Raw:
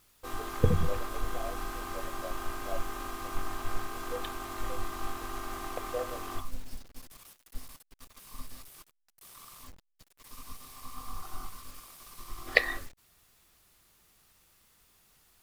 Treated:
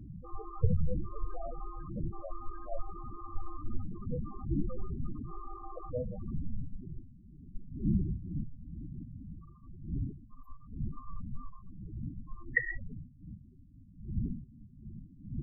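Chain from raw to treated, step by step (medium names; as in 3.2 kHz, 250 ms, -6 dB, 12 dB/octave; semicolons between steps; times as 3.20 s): wind noise 220 Hz -37 dBFS; loudest bins only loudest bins 8; trim -1.5 dB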